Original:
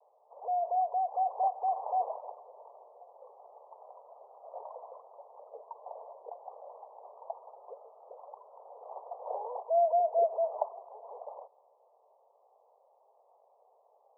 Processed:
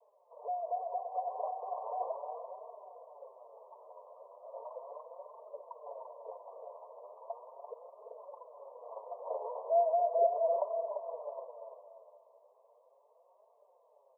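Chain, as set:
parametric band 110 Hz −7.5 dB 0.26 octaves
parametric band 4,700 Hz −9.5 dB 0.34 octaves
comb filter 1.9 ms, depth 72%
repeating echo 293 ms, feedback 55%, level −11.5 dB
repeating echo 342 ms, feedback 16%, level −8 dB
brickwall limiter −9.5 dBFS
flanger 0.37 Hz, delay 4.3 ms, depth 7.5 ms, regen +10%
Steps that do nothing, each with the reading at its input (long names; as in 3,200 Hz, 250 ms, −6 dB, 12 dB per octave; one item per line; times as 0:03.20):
parametric band 110 Hz: nothing at its input below 400 Hz
parametric band 4,700 Hz: nothing at its input above 1,100 Hz
brickwall limiter −9.5 dBFS: peak of its input −16.0 dBFS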